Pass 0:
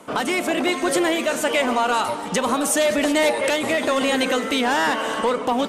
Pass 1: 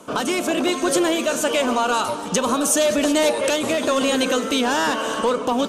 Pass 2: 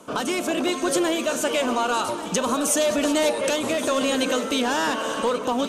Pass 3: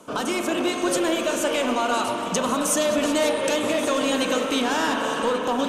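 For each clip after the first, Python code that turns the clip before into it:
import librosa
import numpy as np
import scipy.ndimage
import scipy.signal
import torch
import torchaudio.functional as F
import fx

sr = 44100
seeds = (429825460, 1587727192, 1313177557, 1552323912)

y1 = fx.graphic_eq_31(x, sr, hz=(800, 2000, 6300), db=(-5, -10, 5))
y1 = y1 * 10.0 ** (1.5 / 20.0)
y2 = y1 + 10.0 ** (-14.0 / 20.0) * np.pad(y1, (int(1134 * sr / 1000.0), 0))[:len(y1)]
y2 = y2 * 10.0 ** (-3.0 / 20.0)
y3 = fx.rev_spring(y2, sr, rt60_s=3.6, pass_ms=(40,), chirp_ms=70, drr_db=3.5)
y3 = y3 * 10.0 ** (-1.0 / 20.0)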